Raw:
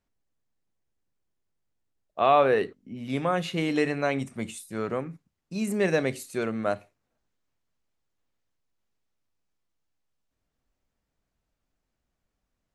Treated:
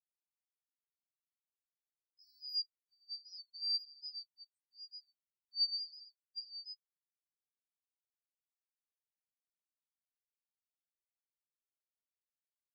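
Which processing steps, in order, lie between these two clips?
four frequency bands reordered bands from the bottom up 4321; peaking EQ 8 kHz +13 dB 0.75 oct; wavefolder -19 dBFS; spectral contrast expander 4:1; trim -6 dB

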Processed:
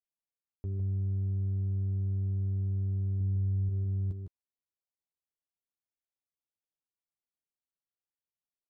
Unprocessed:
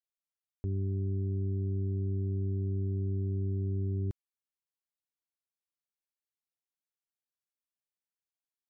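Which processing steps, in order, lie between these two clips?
local Wiener filter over 25 samples; 3.20–3.69 s: bass shelf 420 Hz +10 dB; peak limiter -27 dBFS, peak gain reduction 8 dB; doubling 12 ms -6.5 dB; delay 156 ms -6 dB; trim -3.5 dB

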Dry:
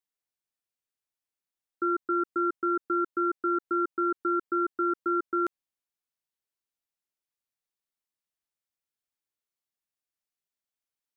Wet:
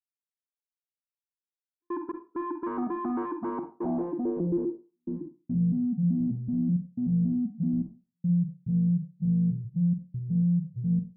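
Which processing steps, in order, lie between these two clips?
expander on every frequency bin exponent 2; low-pass that closes with the level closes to 1 kHz, closed at -23.5 dBFS; cascade formant filter u; ever faster or slower copies 88 ms, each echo -6 st, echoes 3; overdrive pedal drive 41 dB, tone 1 kHz, clips at -16.5 dBFS; trance gate "xx.xxxx..x.xxxx" 71 bpm -60 dB; low-pass sweep 1.2 kHz -> 200 Hz, 3.38–5.26 s; on a send: reverberation RT60 0.35 s, pre-delay 44 ms, DRR 6.5 dB; on the sum: trim -8 dB

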